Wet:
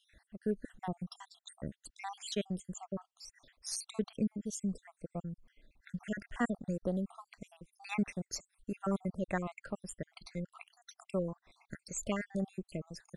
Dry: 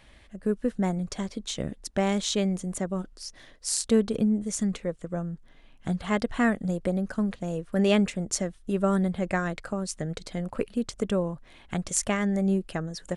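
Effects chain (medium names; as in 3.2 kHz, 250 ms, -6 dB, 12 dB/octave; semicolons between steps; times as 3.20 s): random holes in the spectrogram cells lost 63%; trim -7 dB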